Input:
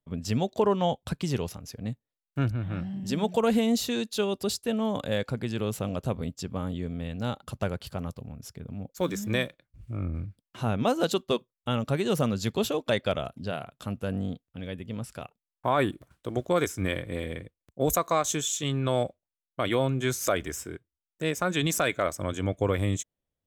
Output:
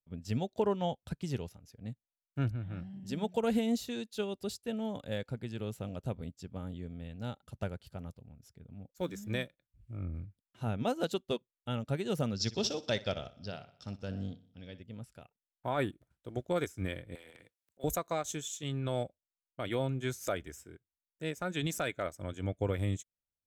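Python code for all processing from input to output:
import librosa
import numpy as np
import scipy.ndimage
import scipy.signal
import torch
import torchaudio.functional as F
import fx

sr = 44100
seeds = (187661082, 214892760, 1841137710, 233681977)

y = fx.chain(x, sr, fx.lowpass_res(hz=5400.0, q=11.0),
    fx.echo_feedback(ms=61, feedback_pct=55, wet_db=-13.0), at=(12.34, 14.83))
y = fx.chain(y, sr, fx.highpass(hz=1200.0, slope=6),
    fx.transient(attack_db=-4, sustain_db=12),
    fx.band_squash(depth_pct=70), at=(17.15, 17.84))
y = fx.low_shelf(y, sr, hz=120.0, db=5.5)
y = fx.notch(y, sr, hz=1100.0, q=7.0)
y = fx.upward_expand(y, sr, threshold_db=-41.0, expansion=1.5)
y = y * librosa.db_to_amplitude(-6.0)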